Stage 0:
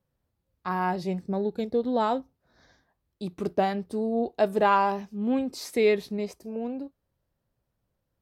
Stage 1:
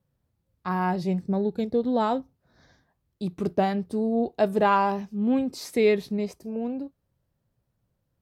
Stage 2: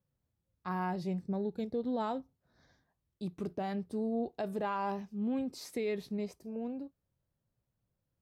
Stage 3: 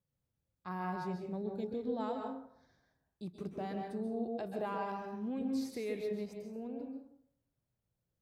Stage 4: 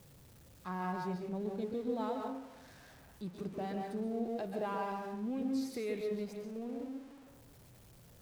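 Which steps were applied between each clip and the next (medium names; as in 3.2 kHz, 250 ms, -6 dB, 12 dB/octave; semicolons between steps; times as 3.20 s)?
peaking EQ 130 Hz +6.5 dB 1.7 oct
peak limiter -18 dBFS, peak gain reduction 8 dB; trim -8.5 dB
plate-style reverb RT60 0.66 s, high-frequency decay 0.55×, pre-delay 120 ms, DRR 2.5 dB; trim -5 dB
jump at every zero crossing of -52 dBFS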